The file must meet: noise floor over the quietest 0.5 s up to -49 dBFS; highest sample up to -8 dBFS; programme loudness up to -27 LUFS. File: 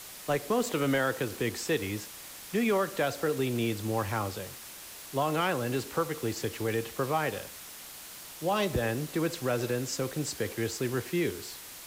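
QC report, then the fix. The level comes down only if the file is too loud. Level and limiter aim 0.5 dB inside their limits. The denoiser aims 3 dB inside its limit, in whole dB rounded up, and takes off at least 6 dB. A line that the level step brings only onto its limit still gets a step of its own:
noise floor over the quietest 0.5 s -46 dBFS: fail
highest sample -16.5 dBFS: pass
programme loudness -31.0 LUFS: pass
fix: noise reduction 6 dB, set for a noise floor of -46 dBFS

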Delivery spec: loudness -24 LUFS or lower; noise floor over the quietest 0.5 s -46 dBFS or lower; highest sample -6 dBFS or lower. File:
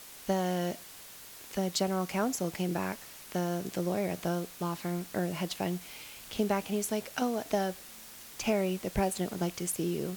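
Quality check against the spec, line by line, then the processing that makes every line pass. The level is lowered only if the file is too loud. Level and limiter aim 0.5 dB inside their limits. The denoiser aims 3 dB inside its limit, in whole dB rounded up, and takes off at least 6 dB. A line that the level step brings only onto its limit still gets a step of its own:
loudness -33.0 LUFS: pass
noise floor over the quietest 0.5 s -49 dBFS: pass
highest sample -15.0 dBFS: pass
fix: none needed

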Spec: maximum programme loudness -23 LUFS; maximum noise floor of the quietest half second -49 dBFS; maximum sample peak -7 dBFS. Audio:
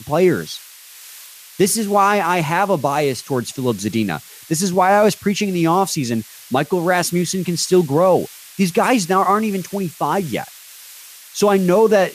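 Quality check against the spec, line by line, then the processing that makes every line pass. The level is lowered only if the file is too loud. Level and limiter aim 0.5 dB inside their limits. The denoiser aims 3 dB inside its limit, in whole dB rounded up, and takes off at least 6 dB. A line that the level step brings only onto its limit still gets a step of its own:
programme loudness -17.5 LUFS: fail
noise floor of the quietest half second -41 dBFS: fail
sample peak -4.0 dBFS: fail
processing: noise reduction 6 dB, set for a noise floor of -41 dBFS; trim -6 dB

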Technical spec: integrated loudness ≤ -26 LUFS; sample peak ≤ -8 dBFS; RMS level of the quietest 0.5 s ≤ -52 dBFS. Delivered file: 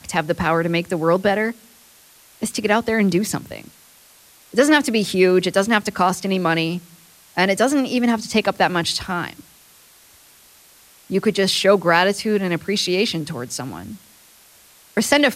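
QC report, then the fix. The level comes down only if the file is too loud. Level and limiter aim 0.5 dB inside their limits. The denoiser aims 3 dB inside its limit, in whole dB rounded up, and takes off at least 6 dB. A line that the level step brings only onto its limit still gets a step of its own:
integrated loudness -19.5 LUFS: fail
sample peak -2.0 dBFS: fail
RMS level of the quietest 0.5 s -50 dBFS: fail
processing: trim -7 dB

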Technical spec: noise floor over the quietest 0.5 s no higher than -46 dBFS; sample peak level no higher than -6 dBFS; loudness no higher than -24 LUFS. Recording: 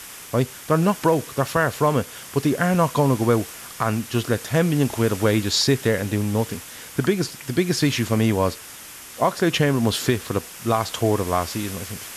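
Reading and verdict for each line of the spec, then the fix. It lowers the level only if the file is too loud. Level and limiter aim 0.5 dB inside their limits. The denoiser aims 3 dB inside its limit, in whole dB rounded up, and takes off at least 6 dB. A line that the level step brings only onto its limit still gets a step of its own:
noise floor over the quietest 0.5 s -40 dBFS: fail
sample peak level -7.0 dBFS: pass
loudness -22.0 LUFS: fail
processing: noise reduction 7 dB, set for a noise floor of -40 dBFS; trim -2.5 dB

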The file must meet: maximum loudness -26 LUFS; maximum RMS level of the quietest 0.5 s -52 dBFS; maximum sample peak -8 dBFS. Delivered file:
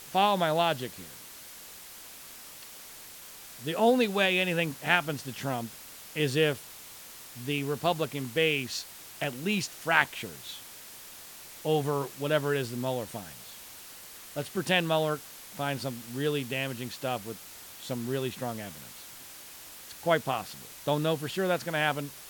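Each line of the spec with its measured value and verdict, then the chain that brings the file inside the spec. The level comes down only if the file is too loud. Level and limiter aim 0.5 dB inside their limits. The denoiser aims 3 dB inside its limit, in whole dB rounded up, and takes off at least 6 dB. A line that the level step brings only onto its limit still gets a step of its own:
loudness -29.5 LUFS: pass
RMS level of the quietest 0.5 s -47 dBFS: fail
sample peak -6.0 dBFS: fail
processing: noise reduction 8 dB, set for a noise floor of -47 dBFS; peak limiter -8.5 dBFS

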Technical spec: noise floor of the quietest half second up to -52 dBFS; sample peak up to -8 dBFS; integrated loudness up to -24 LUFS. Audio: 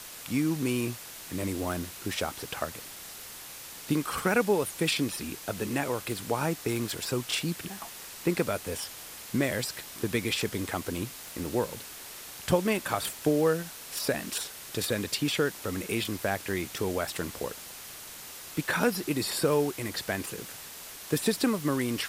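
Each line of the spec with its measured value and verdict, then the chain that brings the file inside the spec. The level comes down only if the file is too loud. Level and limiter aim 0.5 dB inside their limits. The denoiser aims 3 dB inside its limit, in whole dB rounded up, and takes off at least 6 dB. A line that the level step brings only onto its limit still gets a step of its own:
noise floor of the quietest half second -44 dBFS: fail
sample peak -10.0 dBFS: pass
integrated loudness -30.5 LUFS: pass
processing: noise reduction 11 dB, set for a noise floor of -44 dBFS

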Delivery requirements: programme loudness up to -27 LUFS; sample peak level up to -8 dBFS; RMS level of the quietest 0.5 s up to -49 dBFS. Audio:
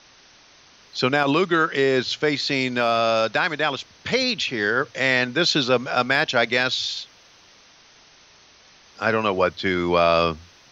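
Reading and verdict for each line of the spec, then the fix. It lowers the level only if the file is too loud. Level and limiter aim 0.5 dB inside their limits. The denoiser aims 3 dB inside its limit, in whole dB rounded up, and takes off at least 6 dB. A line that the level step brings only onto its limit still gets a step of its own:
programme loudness -21.0 LUFS: fail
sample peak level -5.5 dBFS: fail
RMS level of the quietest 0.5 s -52 dBFS: pass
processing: trim -6.5 dB

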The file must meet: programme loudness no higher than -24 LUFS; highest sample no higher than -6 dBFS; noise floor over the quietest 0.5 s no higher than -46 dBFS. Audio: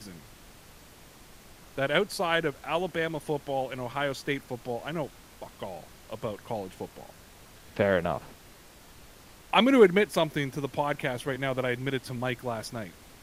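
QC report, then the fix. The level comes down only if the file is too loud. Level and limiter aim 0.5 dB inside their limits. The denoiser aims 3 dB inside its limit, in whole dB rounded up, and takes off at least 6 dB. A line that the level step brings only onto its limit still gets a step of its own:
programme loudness -28.5 LUFS: pass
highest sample -6.5 dBFS: pass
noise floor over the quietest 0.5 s -52 dBFS: pass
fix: none needed

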